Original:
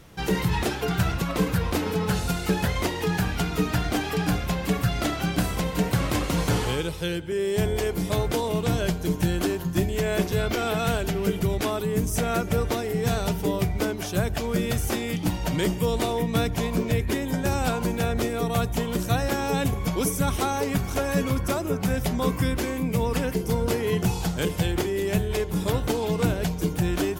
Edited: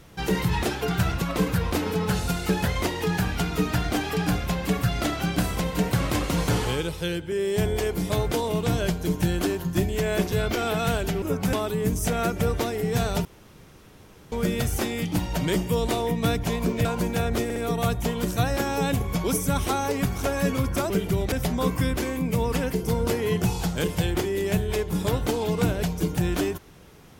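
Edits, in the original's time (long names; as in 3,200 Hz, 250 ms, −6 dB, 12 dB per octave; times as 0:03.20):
0:11.22–0:11.64: swap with 0:21.62–0:21.93
0:13.36–0:14.43: fill with room tone
0:16.96–0:17.69: remove
0:18.28: stutter 0.06 s, 3 plays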